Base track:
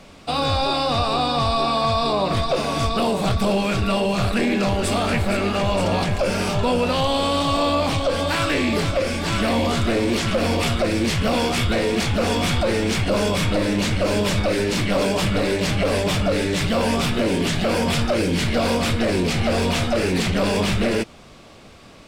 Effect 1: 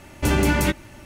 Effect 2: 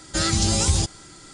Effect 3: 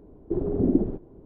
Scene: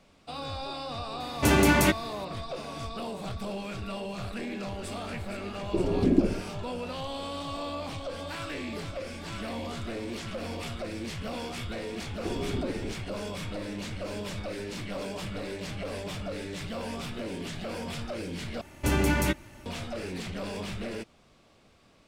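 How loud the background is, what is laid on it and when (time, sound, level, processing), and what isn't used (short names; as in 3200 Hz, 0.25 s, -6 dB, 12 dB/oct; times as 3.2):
base track -15.5 dB
1.2 add 1 + HPF 130 Hz 6 dB/oct
5.43 add 3 -1 dB
11.95 add 3 -0.5 dB + compressor, threshold -29 dBFS
18.61 replace with 1 -5.5 dB
not used: 2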